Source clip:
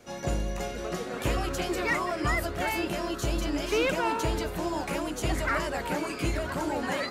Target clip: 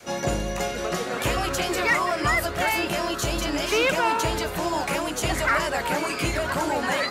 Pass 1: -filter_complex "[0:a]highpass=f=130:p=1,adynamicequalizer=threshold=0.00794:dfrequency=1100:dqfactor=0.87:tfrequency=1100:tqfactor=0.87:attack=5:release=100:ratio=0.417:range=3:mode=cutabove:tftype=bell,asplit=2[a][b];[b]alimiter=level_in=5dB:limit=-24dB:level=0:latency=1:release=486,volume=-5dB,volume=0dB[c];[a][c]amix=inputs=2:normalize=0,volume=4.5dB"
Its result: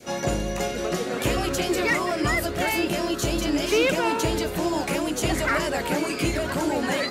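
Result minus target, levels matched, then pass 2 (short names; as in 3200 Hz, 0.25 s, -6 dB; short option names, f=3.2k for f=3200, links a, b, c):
250 Hz band +4.5 dB
-filter_complex "[0:a]highpass=f=130:p=1,adynamicequalizer=threshold=0.00794:dfrequency=300:dqfactor=0.87:tfrequency=300:tqfactor=0.87:attack=5:release=100:ratio=0.417:range=3:mode=cutabove:tftype=bell,asplit=2[a][b];[b]alimiter=level_in=5dB:limit=-24dB:level=0:latency=1:release=486,volume=-5dB,volume=0dB[c];[a][c]amix=inputs=2:normalize=0,volume=4.5dB"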